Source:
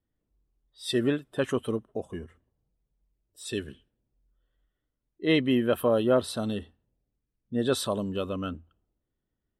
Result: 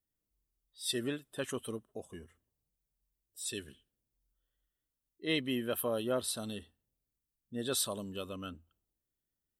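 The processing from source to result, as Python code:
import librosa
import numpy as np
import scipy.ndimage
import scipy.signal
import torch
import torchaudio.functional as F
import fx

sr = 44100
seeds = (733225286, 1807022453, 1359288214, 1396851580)

y = librosa.effects.preemphasis(x, coef=0.8, zi=[0.0])
y = y * 10.0 ** (3.0 / 20.0)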